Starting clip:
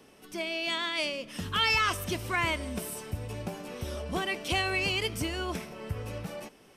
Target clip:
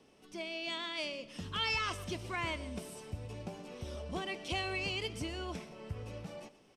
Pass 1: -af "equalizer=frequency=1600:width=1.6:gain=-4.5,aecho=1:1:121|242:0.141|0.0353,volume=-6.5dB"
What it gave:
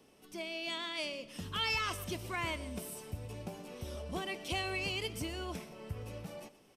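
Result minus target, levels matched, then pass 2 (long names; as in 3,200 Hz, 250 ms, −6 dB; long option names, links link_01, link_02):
8,000 Hz band +3.0 dB
-af "lowpass=7600,equalizer=frequency=1600:width=1.6:gain=-4.5,aecho=1:1:121|242:0.141|0.0353,volume=-6.5dB"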